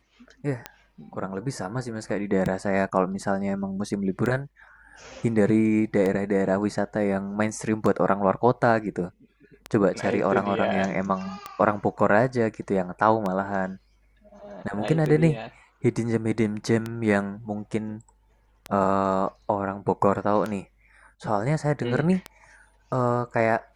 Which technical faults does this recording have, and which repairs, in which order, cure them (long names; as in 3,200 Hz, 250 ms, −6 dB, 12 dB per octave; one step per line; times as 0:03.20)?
scratch tick 33 1/3 rpm −15 dBFS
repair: click removal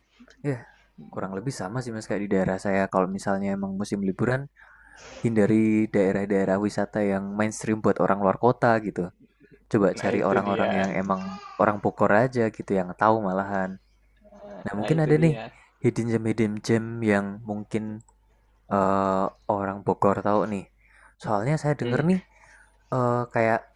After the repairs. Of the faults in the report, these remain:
none of them is left